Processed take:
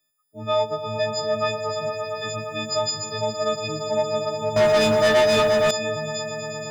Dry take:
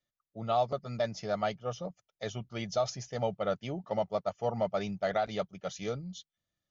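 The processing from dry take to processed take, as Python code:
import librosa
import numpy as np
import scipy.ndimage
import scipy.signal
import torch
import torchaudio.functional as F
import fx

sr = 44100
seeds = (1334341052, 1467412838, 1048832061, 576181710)

p1 = fx.freq_snap(x, sr, grid_st=6)
p2 = fx.echo_swell(p1, sr, ms=116, loudest=5, wet_db=-11)
p3 = 10.0 ** (-21.0 / 20.0) * np.tanh(p2 / 10.0 ** (-21.0 / 20.0))
p4 = p2 + (p3 * librosa.db_to_amplitude(-7.5))
p5 = fx.leveller(p4, sr, passes=3, at=(4.56, 5.71))
y = p5 * librosa.db_to_amplitude(1.0)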